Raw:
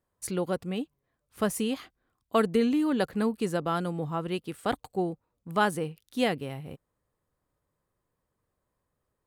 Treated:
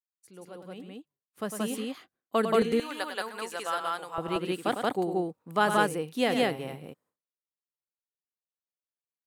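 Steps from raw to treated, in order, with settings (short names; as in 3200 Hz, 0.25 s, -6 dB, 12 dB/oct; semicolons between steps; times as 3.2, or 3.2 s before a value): opening faded in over 3.05 s; expander -60 dBFS; HPF 160 Hz 12 dB/oct, from 2.62 s 900 Hz, from 4.18 s 200 Hz; loudspeakers at several distances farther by 35 m -8 dB, 61 m 0 dB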